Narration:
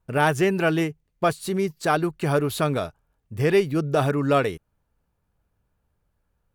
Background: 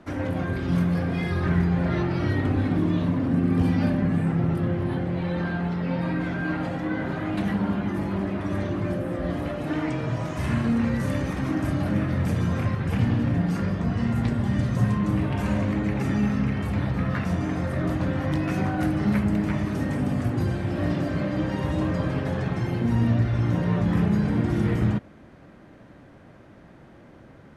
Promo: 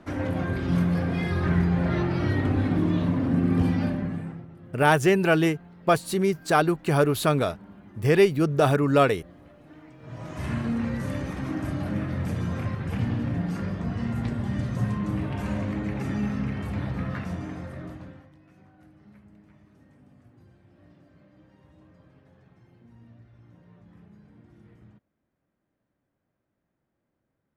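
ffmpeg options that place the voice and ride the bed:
ffmpeg -i stem1.wav -i stem2.wav -filter_complex "[0:a]adelay=4650,volume=1dB[link_01];[1:a]volume=17dB,afade=type=out:start_time=3.59:duration=0.87:silence=0.0841395,afade=type=in:start_time=9.99:duration=0.45:silence=0.133352,afade=type=out:start_time=16.99:duration=1.31:silence=0.0501187[link_02];[link_01][link_02]amix=inputs=2:normalize=0" out.wav

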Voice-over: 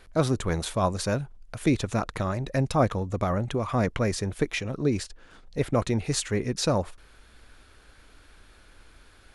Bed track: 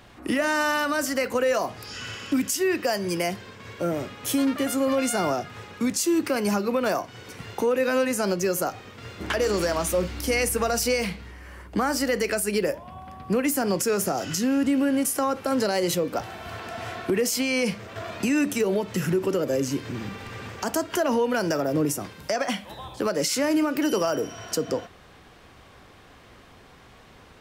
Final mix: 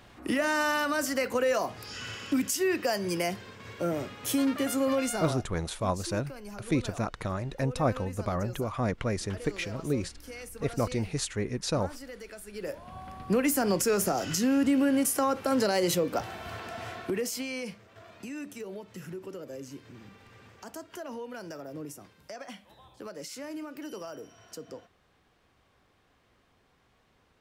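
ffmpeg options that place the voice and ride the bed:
ffmpeg -i stem1.wav -i stem2.wav -filter_complex "[0:a]adelay=5050,volume=-4.5dB[link_01];[1:a]volume=14dB,afade=type=out:start_time=4.94:duration=0.59:silence=0.158489,afade=type=in:start_time=12.54:duration=0.46:silence=0.133352,afade=type=out:start_time=16.3:duration=1.54:silence=0.188365[link_02];[link_01][link_02]amix=inputs=2:normalize=0" out.wav

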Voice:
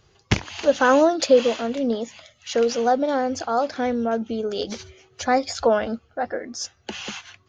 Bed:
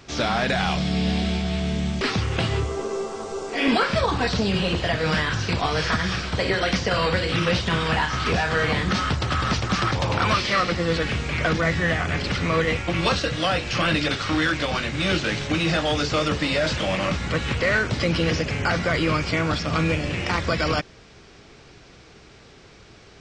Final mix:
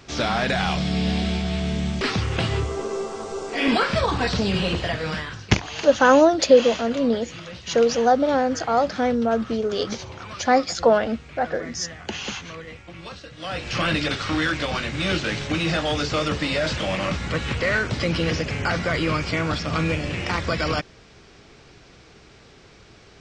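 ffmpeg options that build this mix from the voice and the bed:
ffmpeg -i stem1.wav -i stem2.wav -filter_complex "[0:a]adelay=5200,volume=2dB[link_01];[1:a]volume=15.5dB,afade=type=out:start_time=4.68:duration=0.8:silence=0.149624,afade=type=in:start_time=13.36:duration=0.41:silence=0.16788[link_02];[link_01][link_02]amix=inputs=2:normalize=0" out.wav

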